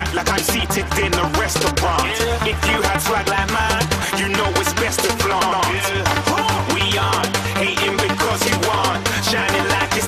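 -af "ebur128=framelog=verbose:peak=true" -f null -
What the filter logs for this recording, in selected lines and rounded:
Integrated loudness:
  I:         -17.7 LUFS
  Threshold: -27.7 LUFS
Loudness range:
  LRA:         0.3 LU
  Threshold: -37.7 LUFS
  LRA low:   -17.8 LUFS
  LRA high:  -17.5 LUFS
True peak:
  Peak:       -6.0 dBFS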